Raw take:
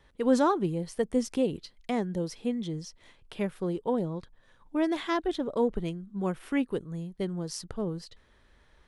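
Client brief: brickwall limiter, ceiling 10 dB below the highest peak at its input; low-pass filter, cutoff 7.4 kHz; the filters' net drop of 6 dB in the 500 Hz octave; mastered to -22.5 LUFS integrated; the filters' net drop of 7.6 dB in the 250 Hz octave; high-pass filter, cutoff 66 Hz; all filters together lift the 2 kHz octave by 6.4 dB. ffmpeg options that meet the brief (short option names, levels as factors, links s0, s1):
-af "highpass=66,lowpass=7400,equalizer=f=250:t=o:g=-8.5,equalizer=f=500:t=o:g=-5,equalizer=f=2000:t=o:g=8,volume=5.96,alimiter=limit=0.316:level=0:latency=1"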